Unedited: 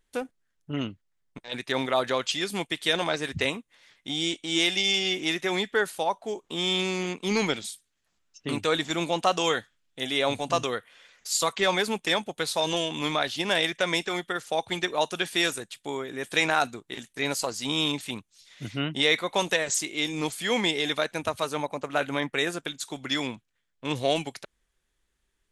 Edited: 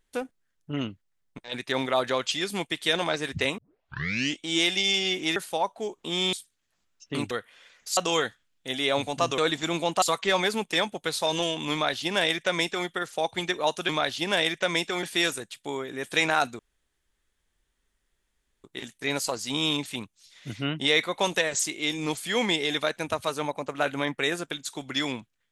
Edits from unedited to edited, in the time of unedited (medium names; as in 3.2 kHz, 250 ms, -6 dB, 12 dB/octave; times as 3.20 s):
3.58 s: tape start 0.82 s
5.36–5.82 s: delete
6.79–7.67 s: delete
8.65–9.29 s: swap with 10.70–11.36 s
13.07–14.21 s: copy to 15.23 s
16.79 s: insert room tone 2.05 s